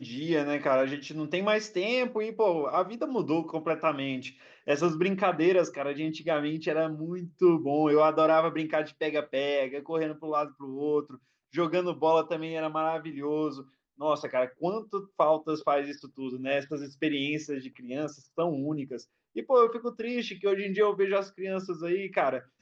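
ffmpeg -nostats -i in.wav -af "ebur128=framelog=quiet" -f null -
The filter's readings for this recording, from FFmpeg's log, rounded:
Integrated loudness:
  I:         -28.7 LUFS
  Threshold: -38.9 LUFS
Loudness range:
  LRA:         4.4 LU
  Threshold: -49.0 LUFS
  LRA low:   -30.9 LUFS
  LRA high:  -26.4 LUFS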